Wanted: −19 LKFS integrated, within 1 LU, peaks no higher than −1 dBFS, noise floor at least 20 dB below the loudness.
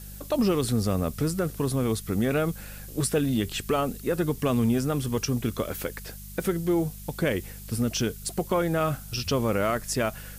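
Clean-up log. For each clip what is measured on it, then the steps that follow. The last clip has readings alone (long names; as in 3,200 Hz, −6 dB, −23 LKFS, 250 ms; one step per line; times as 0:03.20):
mains hum 50 Hz; hum harmonics up to 200 Hz; level of the hum −41 dBFS; background noise floor −42 dBFS; target noise floor −48 dBFS; integrated loudness −27.5 LKFS; sample peak −14.0 dBFS; target loudness −19.0 LKFS
→ hum removal 50 Hz, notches 4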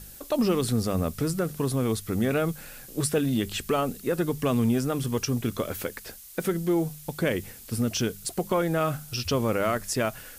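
mains hum none found; background noise floor −46 dBFS; target noise floor −48 dBFS
→ noise reduction from a noise print 6 dB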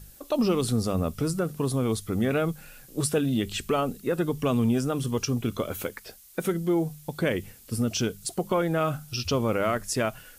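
background noise floor −52 dBFS; integrated loudness −27.5 LKFS; sample peak −13.0 dBFS; target loudness −19.0 LKFS
→ level +8.5 dB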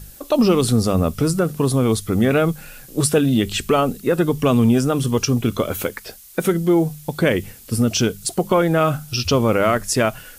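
integrated loudness −19.0 LKFS; sample peak −4.5 dBFS; background noise floor −43 dBFS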